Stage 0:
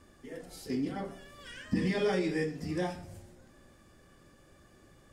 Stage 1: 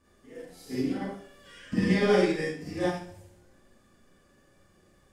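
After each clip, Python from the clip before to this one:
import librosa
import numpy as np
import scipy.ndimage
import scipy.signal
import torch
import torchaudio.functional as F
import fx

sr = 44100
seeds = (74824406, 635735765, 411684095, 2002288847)

y = fx.rev_schroeder(x, sr, rt60_s=0.57, comb_ms=31, drr_db=-6.5)
y = fx.upward_expand(y, sr, threshold_db=-38.0, expansion=1.5)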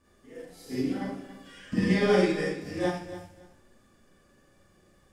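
y = fx.echo_feedback(x, sr, ms=281, feedback_pct=21, wet_db=-13.5)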